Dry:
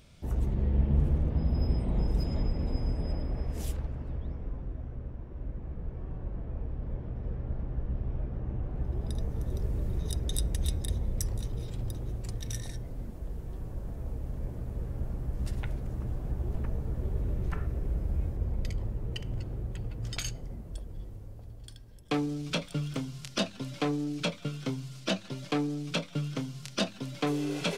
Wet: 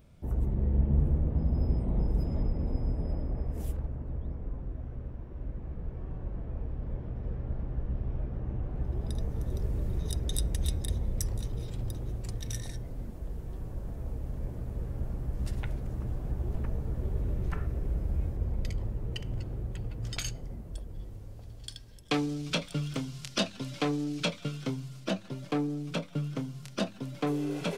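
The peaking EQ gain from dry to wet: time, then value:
peaking EQ 4.6 kHz 2.7 oct
4.02 s -12 dB
4.95 s 0 dB
20.90 s 0 dB
21.75 s +11 dB
22.40 s +2 dB
24.45 s +2 dB
25.07 s -7 dB

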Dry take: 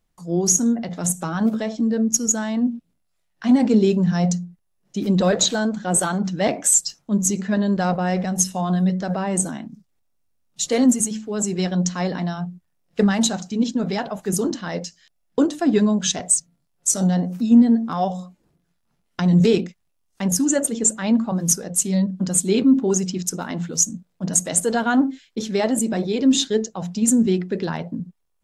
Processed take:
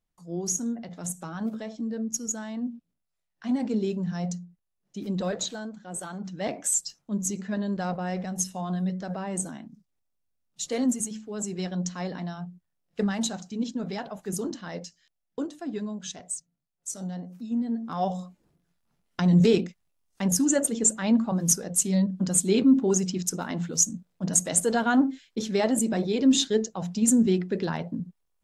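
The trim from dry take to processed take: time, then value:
5.27 s -11 dB
5.88 s -17.5 dB
6.55 s -9 dB
14.84 s -9 dB
15.66 s -15.5 dB
17.60 s -15.5 dB
18.10 s -3.5 dB

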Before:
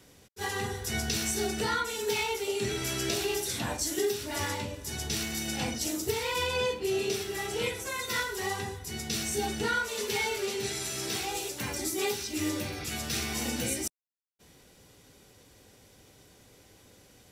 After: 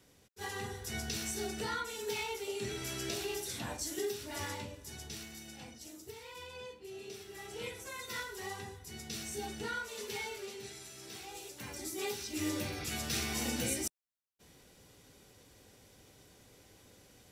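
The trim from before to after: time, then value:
4.60 s -7.5 dB
5.67 s -18 dB
6.90 s -18 dB
7.77 s -9.5 dB
10.15 s -9.5 dB
10.96 s -16 dB
12.63 s -3 dB

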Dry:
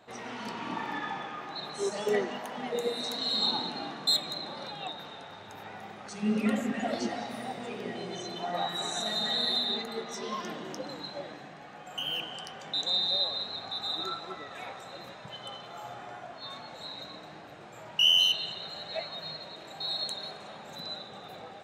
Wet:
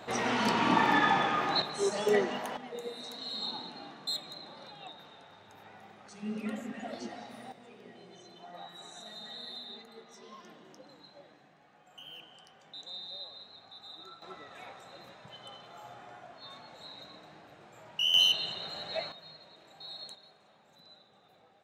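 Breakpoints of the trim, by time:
+10 dB
from 1.62 s +1.5 dB
from 2.57 s -9 dB
from 7.52 s -15 dB
from 14.22 s -6.5 dB
from 18.14 s 0 dB
from 19.12 s -11.5 dB
from 20.15 s -18 dB

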